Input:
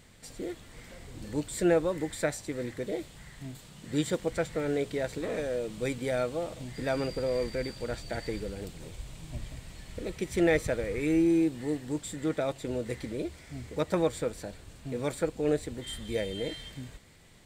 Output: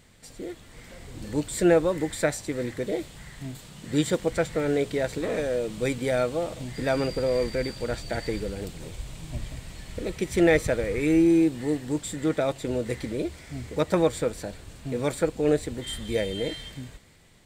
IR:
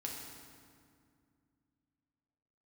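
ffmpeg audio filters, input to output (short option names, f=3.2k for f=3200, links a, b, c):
-af "dynaudnorm=f=270:g=7:m=5dB"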